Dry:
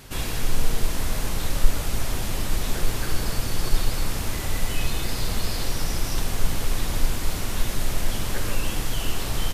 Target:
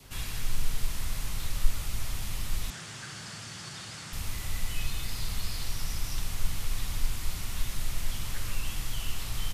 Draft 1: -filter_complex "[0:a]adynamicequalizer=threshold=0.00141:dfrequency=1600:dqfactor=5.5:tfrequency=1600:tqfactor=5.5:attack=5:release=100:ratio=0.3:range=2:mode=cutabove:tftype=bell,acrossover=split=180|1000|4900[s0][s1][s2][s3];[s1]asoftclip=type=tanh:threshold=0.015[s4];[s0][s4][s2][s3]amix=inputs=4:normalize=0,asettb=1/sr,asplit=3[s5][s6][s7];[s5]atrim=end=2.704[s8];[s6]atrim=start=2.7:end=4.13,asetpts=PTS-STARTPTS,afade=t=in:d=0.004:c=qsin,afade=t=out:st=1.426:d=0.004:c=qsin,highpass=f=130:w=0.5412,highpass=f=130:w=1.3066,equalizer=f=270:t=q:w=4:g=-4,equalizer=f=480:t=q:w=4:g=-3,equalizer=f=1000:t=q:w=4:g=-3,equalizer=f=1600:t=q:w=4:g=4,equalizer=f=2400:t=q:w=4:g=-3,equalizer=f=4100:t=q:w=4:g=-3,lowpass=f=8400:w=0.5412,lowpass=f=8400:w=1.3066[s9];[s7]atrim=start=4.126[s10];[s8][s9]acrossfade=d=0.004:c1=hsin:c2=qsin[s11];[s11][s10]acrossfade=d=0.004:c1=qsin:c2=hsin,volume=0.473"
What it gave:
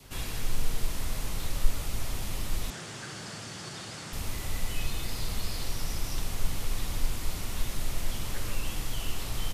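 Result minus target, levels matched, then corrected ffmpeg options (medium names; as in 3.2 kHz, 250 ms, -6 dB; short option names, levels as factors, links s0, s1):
saturation: distortion -8 dB
-filter_complex "[0:a]adynamicequalizer=threshold=0.00141:dfrequency=1600:dqfactor=5.5:tfrequency=1600:tqfactor=5.5:attack=5:release=100:ratio=0.3:range=2:mode=cutabove:tftype=bell,acrossover=split=180|1000|4900[s0][s1][s2][s3];[s1]asoftclip=type=tanh:threshold=0.00376[s4];[s0][s4][s2][s3]amix=inputs=4:normalize=0,asettb=1/sr,asplit=3[s5][s6][s7];[s5]atrim=end=2.704[s8];[s6]atrim=start=2.7:end=4.13,asetpts=PTS-STARTPTS,afade=t=in:d=0.004:c=qsin,afade=t=out:st=1.426:d=0.004:c=qsin,highpass=f=130:w=0.5412,highpass=f=130:w=1.3066,equalizer=f=270:t=q:w=4:g=-4,equalizer=f=480:t=q:w=4:g=-3,equalizer=f=1000:t=q:w=4:g=-3,equalizer=f=1600:t=q:w=4:g=4,equalizer=f=2400:t=q:w=4:g=-3,equalizer=f=4100:t=q:w=4:g=-3,lowpass=f=8400:w=0.5412,lowpass=f=8400:w=1.3066[s9];[s7]atrim=start=4.126[s10];[s8][s9]acrossfade=d=0.004:c1=hsin:c2=qsin[s11];[s11][s10]acrossfade=d=0.004:c1=qsin:c2=hsin,volume=0.473"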